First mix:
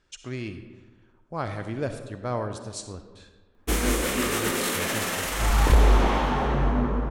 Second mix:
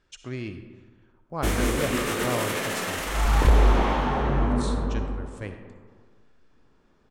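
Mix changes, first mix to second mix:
background: entry −2.25 s
master: add high-shelf EQ 4,500 Hz −5.5 dB

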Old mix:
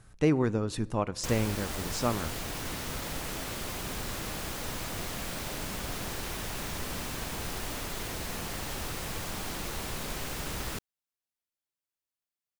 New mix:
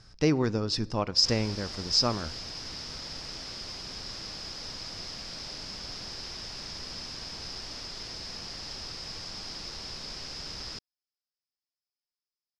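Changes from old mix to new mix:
background −8.5 dB
master: add low-pass with resonance 5,100 Hz, resonance Q 11

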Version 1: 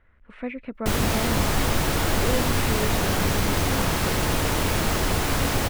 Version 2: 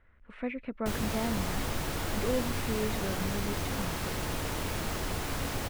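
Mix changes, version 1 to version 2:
speech −3.0 dB
background −10.5 dB

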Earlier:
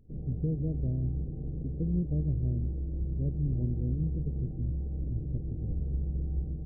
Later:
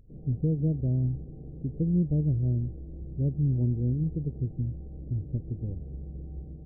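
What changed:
speech +5.5 dB
background: add spectral tilt +2 dB per octave

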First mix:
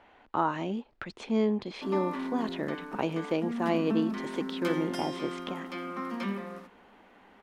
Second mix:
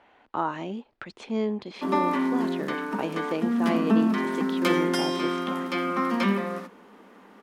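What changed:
background +10.5 dB
master: add low-shelf EQ 74 Hz −11 dB

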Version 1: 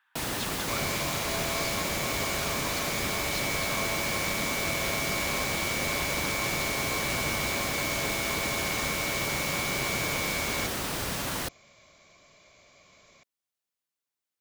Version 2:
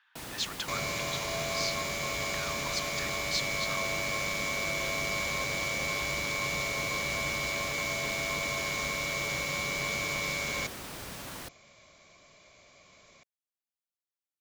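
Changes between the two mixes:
speech: add spectral tilt +3.5 dB per octave
first sound −10.0 dB

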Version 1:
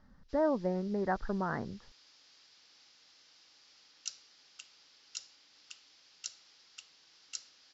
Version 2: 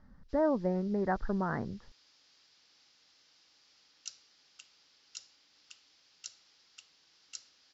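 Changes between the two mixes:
background −3.5 dB
master: add low-shelf EQ 260 Hz +4 dB

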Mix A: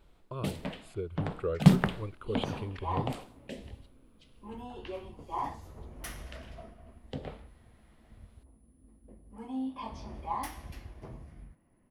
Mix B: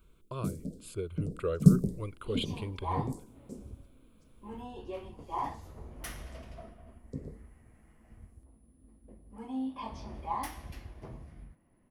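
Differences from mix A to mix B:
speech: add high-shelf EQ 3,500 Hz +12 dB
first sound: add inverse Chebyshev band-stop filter 1,000–2,700 Hz, stop band 60 dB

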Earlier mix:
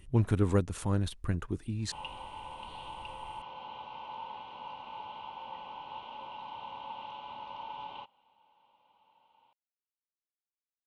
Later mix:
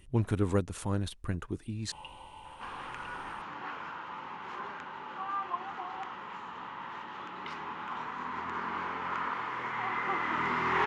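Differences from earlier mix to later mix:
first sound −5.0 dB
second sound: unmuted
master: add low-shelf EQ 170 Hz −4 dB

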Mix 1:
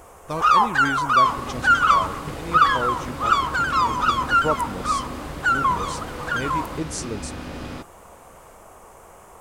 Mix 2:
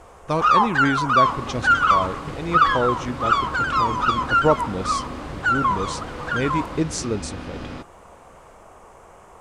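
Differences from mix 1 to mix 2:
speech +6.5 dB
master: add high-frequency loss of the air 57 metres

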